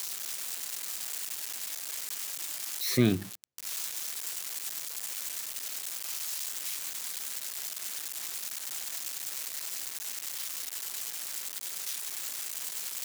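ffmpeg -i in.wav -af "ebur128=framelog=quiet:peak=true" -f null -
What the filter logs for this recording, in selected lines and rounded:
Integrated loudness:
  I:         -33.3 LUFS
  Threshold: -43.4 LUFS
Loudness range:
  LRA:         2.6 LU
  Threshold: -53.2 LUFS
  LRA low:   -34.3 LUFS
  LRA high:  -31.7 LUFS
True peak:
  Peak:      -11.4 dBFS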